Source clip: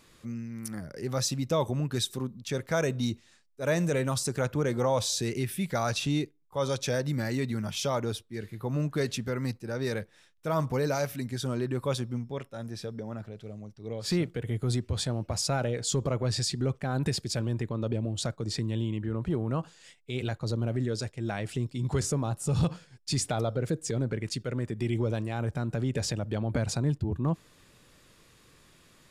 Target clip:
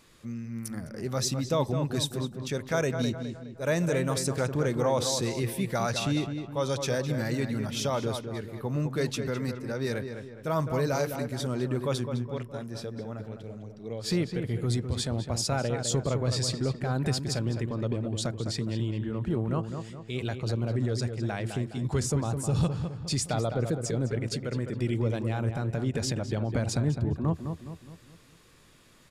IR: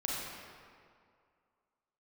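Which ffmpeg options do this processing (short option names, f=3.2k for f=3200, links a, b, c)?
-filter_complex "[0:a]asplit=2[a][b];[b]adelay=208,lowpass=f=2.3k:p=1,volume=-7dB,asplit=2[c][d];[d]adelay=208,lowpass=f=2.3k:p=1,volume=0.46,asplit=2[e][f];[f]adelay=208,lowpass=f=2.3k:p=1,volume=0.46,asplit=2[g][h];[h]adelay=208,lowpass=f=2.3k:p=1,volume=0.46,asplit=2[i][j];[j]adelay=208,lowpass=f=2.3k:p=1,volume=0.46[k];[a][c][e][g][i][k]amix=inputs=6:normalize=0"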